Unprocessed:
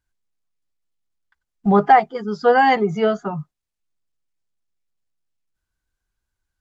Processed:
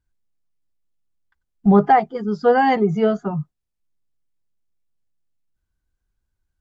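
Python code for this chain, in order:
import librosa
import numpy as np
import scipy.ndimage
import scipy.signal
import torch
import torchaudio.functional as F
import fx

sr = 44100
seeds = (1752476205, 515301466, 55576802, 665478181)

y = fx.low_shelf(x, sr, hz=490.0, db=10.0)
y = y * librosa.db_to_amplitude(-5.0)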